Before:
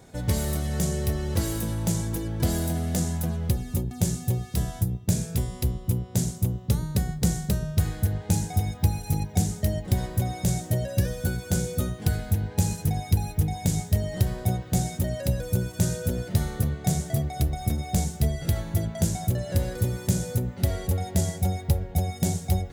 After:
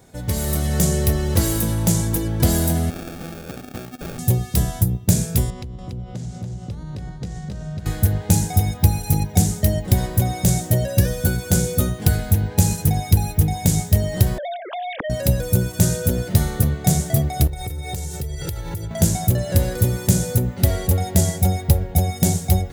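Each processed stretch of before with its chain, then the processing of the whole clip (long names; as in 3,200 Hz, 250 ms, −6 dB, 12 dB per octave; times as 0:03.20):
0:02.90–0:04.19: meter weighting curve A + downward compressor 5 to 1, threshold −35 dBFS + sample-rate reduction 1,000 Hz
0:05.50–0:07.86: high-frequency loss of the air 120 metres + downward compressor 8 to 1, threshold −36 dBFS + single-tap delay 285 ms −5.5 dB
0:14.38–0:15.10: three sine waves on the formant tracks + downward compressor 4 to 1, threshold −34 dBFS
0:17.47–0:18.91: comb filter 2.2 ms, depth 88% + downward compressor 16 to 1, threshold −31 dBFS
whole clip: high-shelf EQ 11,000 Hz +7.5 dB; automatic gain control gain up to 8 dB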